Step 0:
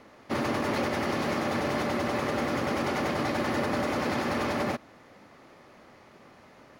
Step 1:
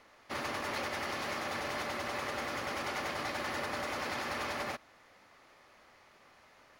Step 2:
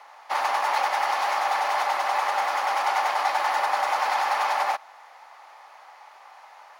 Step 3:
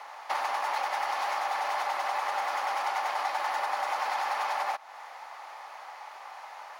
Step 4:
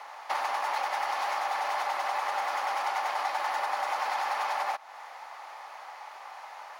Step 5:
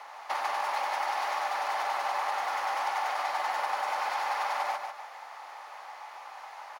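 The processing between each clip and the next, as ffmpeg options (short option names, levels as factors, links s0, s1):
-af "equalizer=f=200:w=0.38:g=-13.5,volume=0.75"
-af "highpass=f=830:t=q:w=4.9,volume=2.24"
-af "acompressor=threshold=0.0178:ratio=3,volume=1.58"
-af anull
-af "aecho=1:1:147|294|441|588:0.501|0.175|0.0614|0.0215,volume=0.841"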